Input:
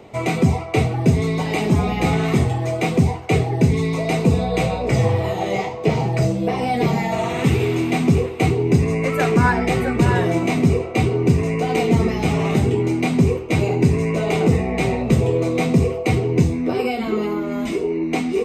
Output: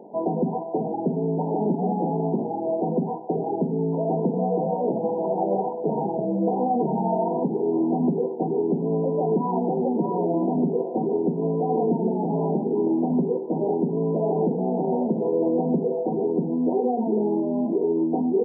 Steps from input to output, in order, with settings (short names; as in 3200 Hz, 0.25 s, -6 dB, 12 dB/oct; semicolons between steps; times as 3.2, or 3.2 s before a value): limiter -13 dBFS, peak gain reduction 9 dB; brick-wall FIR band-pass 160–1000 Hz